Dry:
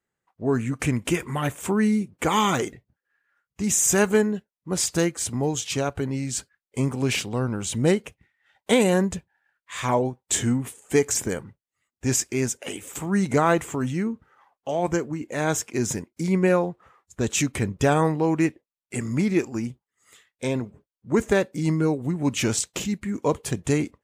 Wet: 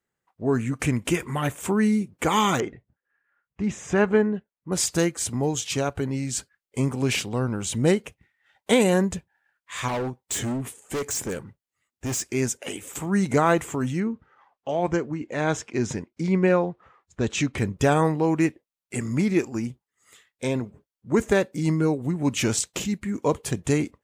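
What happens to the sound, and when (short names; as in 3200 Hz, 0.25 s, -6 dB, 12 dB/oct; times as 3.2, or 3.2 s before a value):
2.6–4.72 LPF 2300 Hz
9.88–12.26 hard clip -25 dBFS
14–17.58 LPF 4800 Hz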